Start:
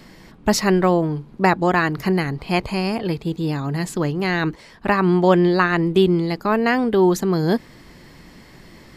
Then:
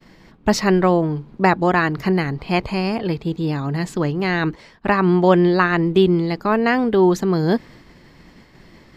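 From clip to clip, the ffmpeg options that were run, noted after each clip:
ffmpeg -i in.wav -af "agate=range=-33dB:threshold=-40dB:ratio=3:detection=peak,equalizer=frequency=11000:width_type=o:width=1.1:gain=-10,volume=1dB" out.wav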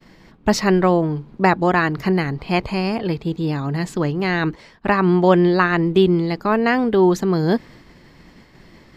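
ffmpeg -i in.wav -af anull out.wav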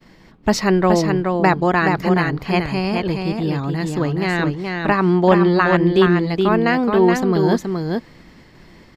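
ffmpeg -i in.wav -af "aecho=1:1:423:0.596" out.wav

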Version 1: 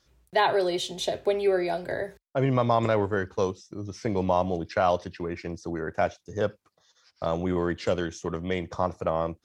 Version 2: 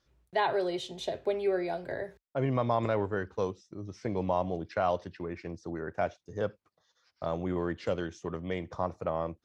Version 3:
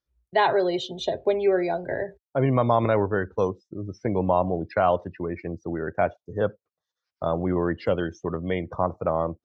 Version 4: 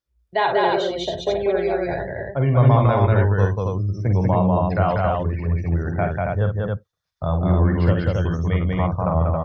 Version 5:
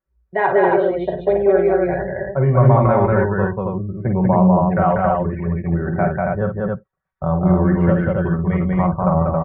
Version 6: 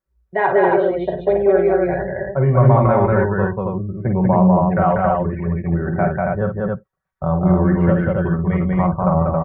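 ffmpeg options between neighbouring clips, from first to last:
ffmpeg -i in.wav -af "aemphasis=mode=reproduction:type=cd,volume=-5.5dB" out.wav
ffmpeg -i in.wav -af "afftdn=noise_reduction=23:noise_floor=-47,volume=7.5dB" out.wav
ffmpeg -i in.wav -filter_complex "[0:a]asubboost=boost=9:cutoff=110,asplit=2[link_01][link_02];[link_02]aecho=0:1:49.56|192.4|274.1:0.447|0.794|0.708[link_03];[link_01][link_03]amix=inputs=2:normalize=0" out.wav
ffmpeg -i in.wav -af "lowpass=frequency=1900:width=0.5412,lowpass=frequency=1900:width=1.3066,aecho=1:1:5.3:0.66,volume=2.5dB" out.wav
ffmpeg -i in.wav -af "aeval=exprs='0.891*(cos(1*acos(clip(val(0)/0.891,-1,1)))-cos(1*PI/2))+0.00631*(cos(5*acos(clip(val(0)/0.891,-1,1)))-cos(5*PI/2))':channel_layout=same" out.wav

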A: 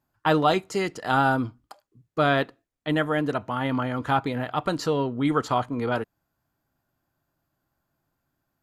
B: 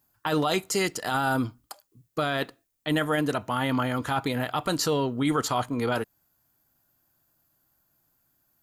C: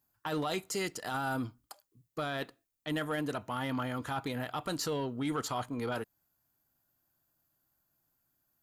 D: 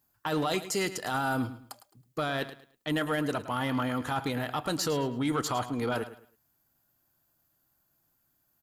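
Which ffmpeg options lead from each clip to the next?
ffmpeg -i in.wav -af "aemphasis=mode=production:type=75kf,alimiter=limit=-16dB:level=0:latency=1:release=20" out.wav
ffmpeg -i in.wav -af "asoftclip=type=tanh:threshold=-17dB,volume=-7.5dB" out.wav
ffmpeg -i in.wav -af "aecho=1:1:107|214|321:0.211|0.0592|0.0166,volume=4.5dB" out.wav

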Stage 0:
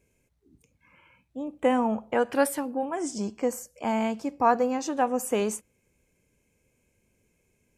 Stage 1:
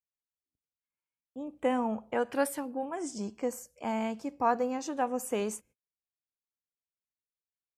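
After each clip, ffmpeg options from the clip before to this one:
ffmpeg -i in.wav -af "agate=range=-37dB:threshold=-52dB:ratio=16:detection=peak,volume=-5.5dB" out.wav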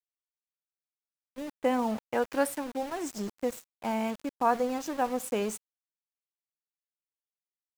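ffmpeg -i in.wav -af "aeval=exprs='val(0)*gte(abs(val(0)),0.01)':channel_layout=same,agate=range=-8dB:threshold=-43dB:ratio=16:detection=peak,volume=1.5dB" out.wav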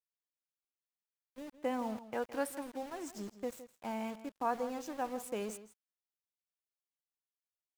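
ffmpeg -i in.wav -filter_complex "[0:a]asplit=2[link_01][link_02];[link_02]adelay=163.3,volume=-14dB,highshelf=frequency=4000:gain=-3.67[link_03];[link_01][link_03]amix=inputs=2:normalize=0,volume=-8.5dB" out.wav

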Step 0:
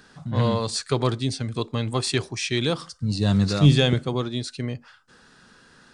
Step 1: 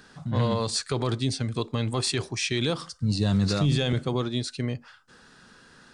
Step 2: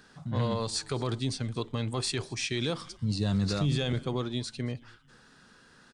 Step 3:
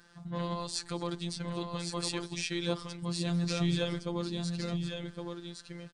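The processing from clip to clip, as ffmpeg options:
ffmpeg -i in.wav -af "alimiter=limit=-15dB:level=0:latency=1:release=37" out.wav
ffmpeg -i in.wav -filter_complex "[0:a]asplit=4[link_01][link_02][link_03][link_04];[link_02]adelay=225,afreqshift=-130,volume=-23dB[link_05];[link_03]adelay=450,afreqshift=-260,volume=-30.5dB[link_06];[link_04]adelay=675,afreqshift=-390,volume=-38.1dB[link_07];[link_01][link_05][link_06][link_07]amix=inputs=4:normalize=0,volume=-4.5dB" out.wav
ffmpeg -i in.wav -af "aecho=1:1:1113:0.562,afftfilt=real='hypot(re,im)*cos(PI*b)':imag='0':win_size=1024:overlap=0.75" out.wav

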